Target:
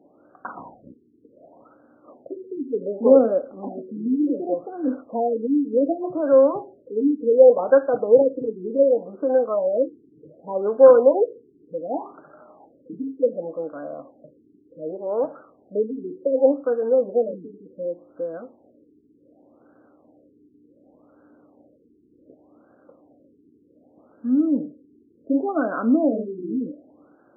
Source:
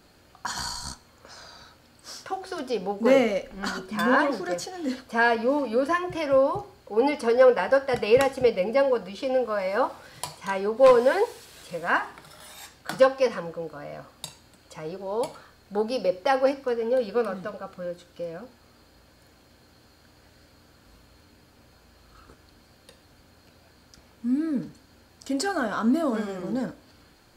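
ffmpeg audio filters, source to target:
-af "highpass=270,equalizer=f=290:t=q:w=4:g=8,equalizer=f=580:t=q:w=4:g=4,equalizer=f=950:t=q:w=4:g=-8,equalizer=f=1800:t=q:w=4:g=-6,lowpass=f=2500:w=0.5412,lowpass=f=2500:w=1.3066,afftfilt=real='re*lt(b*sr/1024,430*pow(1700/430,0.5+0.5*sin(2*PI*0.67*pts/sr)))':imag='im*lt(b*sr/1024,430*pow(1700/430,0.5+0.5*sin(2*PI*0.67*pts/sr)))':win_size=1024:overlap=0.75,volume=1.5"

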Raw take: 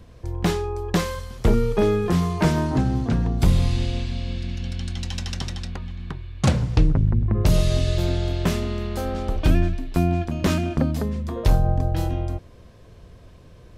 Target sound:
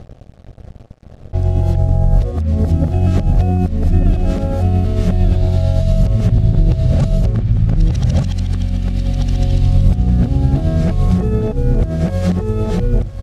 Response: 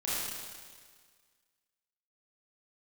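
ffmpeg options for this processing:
-filter_complex "[0:a]areverse,asplit=2[s0][s1];[s1]alimiter=limit=0.168:level=0:latency=1:release=456,volume=0.794[s2];[s0][s2]amix=inputs=2:normalize=0,asetrate=45938,aresample=44100,bandreject=f=50:t=h:w=6,bandreject=f=100:t=h:w=6,bandreject=f=150:t=h:w=6,bandreject=f=200:t=h:w=6,bandreject=f=250:t=h:w=6,bandreject=f=300:t=h:w=6,bandreject=f=350:t=h:w=6,acrusher=bits=5:mix=0:aa=0.5,asplit=2[s3][s4];[s4]aecho=0:1:1187:0.668[s5];[s3][s5]amix=inputs=2:normalize=0,tremolo=f=8.8:d=0.34,lowpass=11000,equalizer=f=620:t=o:w=0.96:g=9,acompressor=threshold=0.158:ratio=6,bass=f=250:g=14,treble=f=4000:g=-1,bandreject=f=980:w=5.8,volume=0.631"

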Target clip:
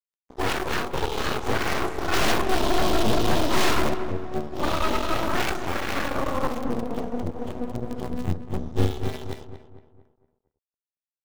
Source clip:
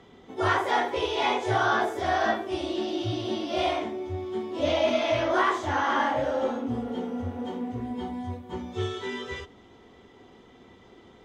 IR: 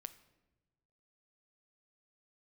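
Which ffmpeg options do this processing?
-filter_complex "[0:a]highshelf=f=5200:g=-5.5,acrossover=split=690|3700[s0][s1][s2];[s1]acrusher=bits=4:dc=4:mix=0:aa=0.000001[s3];[s0][s3][s2]amix=inputs=3:normalize=0,asplit=3[s4][s5][s6];[s4]afade=t=out:st=2.12:d=0.02[s7];[s5]acontrast=86,afade=t=in:st=2.12:d=0.02,afade=t=out:st=3.93:d=0.02[s8];[s6]afade=t=in:st=3.93:d=0.02[s9];[s7][s8][s9]amix=inputs=3:normalize=0,aeval=exprs='0.473*(cos(1*acos(clip(val(0)/0.473,-1,1)))-cos(1*PI/2))+0.015*(cos(3*acos(clip(val(0)/0.473,-1,1)))-cos(3*PI/2))+0.0237*(cos(5*acos(clip(val(0)/0.473,-1,1)))-cos(5*PI/2))+0.168*(cos(8*acos(clip(val(0)/0.473,-1,1)))-cos(8*PI/2))':c=same,aeval=exprs='sgn(val(0))*max(abs(val(0))-0.00891,0)':c=same,aeval=exprs='(tanh(8.91*val(0)+0.4)-tanh(0.4))/8.91':c=same,asettb=1/sr,asplit=3[s10][s11][s12];[s10]atrim=end=8.074[s13];[s11]atrim=start=8.07:end=9.08,asetpts=PTS-STARTPTS,afade=t=in:d=0.004:c=qsin,afade=t=out:st=1.006:d=0.004:c=qsin,bass=f=250:g=9,treble=f=4000:g=0[s14];[s12]atrim=start=9.076[s15];[s13][s14]acrossfade=d=0.004:c1=hsin:c2=qsin[s16];[s16][s15]acrossfade=d=0.004:c1=qsin:c2=hsin,asplit=2[s17][s18];[s18]adelay=229,lowpass=f=2000:p=1,volume=0.335,asplit=2[s19][s20];[s20]adelay=229,lowpass=f=2000:p=1,volume=0.46,asplit=2[s21][s22];[s22]adelay=229,lowpass=f=2000:p=1,volume=0.46,asplit=2[s23][s24];[s24]adelay=229,lowpass=f=2000:p=1,volume=0.46,asplit=2[s25][s26];[s26]adelay=229,lowpass=f=2000:p=1,volume=0.46[s27];[s17][s19][s21][s23][s25][s27]amix=inputs=6:normalize=0,volume=1.26"

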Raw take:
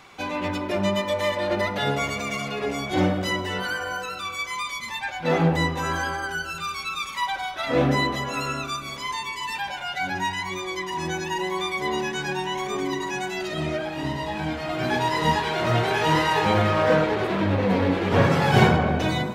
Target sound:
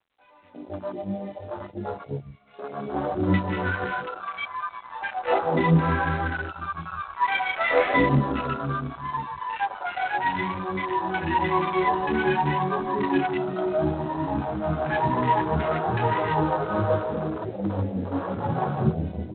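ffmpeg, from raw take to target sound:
-filter_complex "[0:a]acrossover=split=2500[s0][s1];[s1]acompressor=threshold=0.00891:ratio=4:attack=1:release=60[s2];[s0][s2]amix=inputs=2:normalize=0,asplit=3[s3][s4][s5];[s3]afade=t=out:st=1.4:d=0.02[s6];[s4]agate=range=0.282:threshold=0.0562:ratio=16:detection=peak,afade=t=in:st=1.4:d=0.02,afade=t=out:st=2.46:d=0.02[s7];[s5]afade=t=in:st=2.46:d=0.02[s8];[s6][s7][s8]amix=inputs=3:normalize=0,asettb=1/sr,asplit=3[s9][s10][s11];[s9]atrim=end=7.254[s12];[s10]atrim=start=7.25:end=7.99,asetpts=PTS-STARTPTS,afade=t=in:d=0.004:c=qsin,afade=t=out:st=0.736:d=0.004:c=qsin,equalizer=f=2200:t=o:w=0.67:g=13[s13];[s11]atrim=start=7.986[s14];[s12][s13]acrossfade=d=0.004:c1=hsin:c2=qsin[s15];[s15][s14]acrossfade=d=0.004:c1=qsin:c2=hsin,acrossover=split=1300[s16][s17];[s16]aeval=exprs='val(0)*(1-0.7/2+0.7/2*cos(2*PI*5.8*n/s))':c=same[s18];[s17]aeval=exprs='val(0)*(1-0.7/2-0.7/2*cos(2*PI*5.8*n/s))':c=same[s19];[s18][s19]amix=inputs=2:normalize=0,bandreject=f=60:t=h:w=6,bandreject=f=120:t=h:w=6,bandreject=f=180:t=h:w=6,bandreject=f=240:t=h:w=6,dynaudnorm=f=270:g=21:m=7.08,aemphasis=mode=reproduction:type=50fm,flanger=delay=8.8:depth=8.5:regen=-11:speed=0.63:shape=triangular,aeval=exprs='clip(val(0),-1,0.299)':c=same,acrossover=split=430|2400[s20][s21][s22];[s22]adelay=30[s23];[s20]adelay=240[s24];[s24][s21][s23]amix=inputs=3:normalize=0,afwtdn=0.0398" -ar 8000 -c:a adpcm_g726 -b:a 24k

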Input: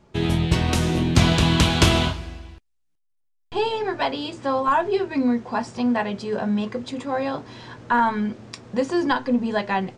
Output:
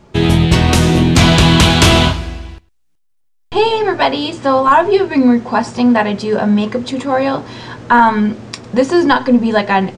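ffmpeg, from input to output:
-filter_complex "[0:a]apsyclip=4.22,asplit=2[s0][s1];[s1]aecho=0:1:104:0.0708[s2];[s0][s2]amix=inputs=2:normalize=0,volume=0.794"

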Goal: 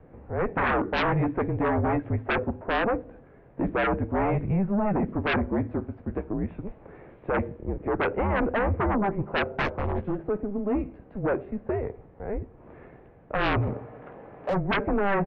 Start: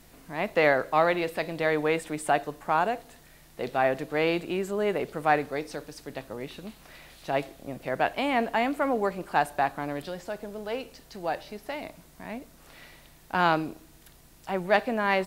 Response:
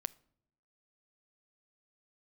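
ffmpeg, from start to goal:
-filter_complex "[0:a]highpass=f=240:t=q:w=0.5412,highpass=f=240:t=q:w=1.307,lowpass=f=2500:t=q:w=0.5176,lowpass=f=2500:t=q:w=0.7071,lowpass=f=2500:t=q:w=1.932,afreqshift=-200,asettb=1/sr,asplit=3[s0][s1][s2];[s0]atrim=end=9.534[s3];[s1]atrim=start=9.53:end=10.2,asetpts=PTS-STARTPTS,afade=t=in:d=0.004:c=qsin,afade=t=out:st=0.666:d=0.004:c=qsin,aeval=exprs='0.224*(cos(1*acos(clip(val(0)/0.224,-1,1)))-cos(1*PI/2))+0.0562*(cos(6*acos(clip(val(0)/0.224,-1,1)))-cos(6*PI/2))':c=same[s4];[s2]atrim=start=10.196[s5];[s3][s4]acrossfade=d=0.004:c1=hsin:c2=qsin[s6];[s6][s5]acrossfade=d=0.004:c1=qsin:c2=hsin,acrossover=split=810[s7][s8];[s7]aeval=exprs='0.237*sin(PI/2*5.62*val(0)/0.237)':c=same[s9];[s8]asplit=2[s10][s11];[s11]adelay=14,volume=0.631[s12];[s10][s12]amix=inputs=2:normalize=0[s13];[s9][s13]amix=inputs=2:normalize=0,asplit=3[s14][s15][s16];[s14]afade=t=out:st=13.61:d=0.02[s17];[s15]asplit=2[s18][s19];[s19]highpass=f=720:p=1,volume=14.1,asoftclip=type=tanh:threshold=0.266[s20];[s18][s20]amix=inputs=2:normalize=0,lowpass=f=1700:p=1,volume=0.501,afade=t=in:st=13.61:d=0.02,afade=t=out:st=14.53:d=0.02[s21];[s16]afade=t=in:st=14.53:d=0.02[s22];[s17][s21][s22]amix=inputs=3:normalize=0,volume=0.376"

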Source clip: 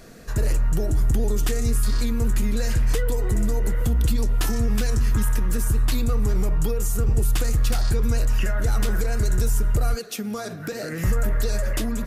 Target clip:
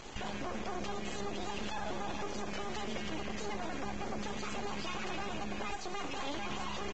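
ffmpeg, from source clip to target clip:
-filter_complex "[0:a]acrossover=split=2700[s0][s1];[s1]acompressor=threshold=0.00562:ratio=4:attack=1:release=60[s2];[s0][s2]amix=inputs=2:normalize=0,afftfilt=real='re*lt(hypot(re,im),0.447)':imag='im*lt(hypot(re,im),0.447)':win_size=1024:overlap=0.75,bandreject=f=50:t=h:w=6,bandreject=f=100:t=h:w=6,bandreject=f=150:t=h:w=6,bandreject=f=200:t=h:w=6,acompressor=threshold=0.0398:ratio=8,alimiter=level_in=1.5:limit=0.0631:level=0:latency=1:release=67,volume=0.668,acrusher=bits=5:dc=4:mix=0:aa=0.000001,asoftclip=type=hard:threshold=0.0355,asetrate=76734,aresample=44100,asplit=2[s3][s4];[s4]aecho=0:1:339|678|1017|1356:0.158|0.0697|0.0307|0.0135[s5];[s3][s5]amix=inputs=2:normalize=0,aresample=16000,aresample=44100,volume=1.12" -ar 22050 -c:a libvorbis -b:a 16k

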